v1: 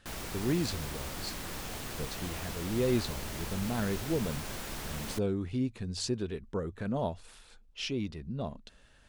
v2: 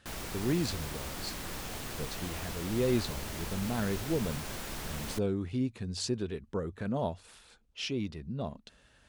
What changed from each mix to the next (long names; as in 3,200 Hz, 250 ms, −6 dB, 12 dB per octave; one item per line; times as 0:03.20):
speech: add high-pass filter 49 Hz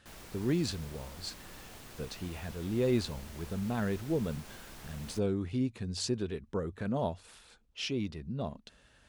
background −10.0 dB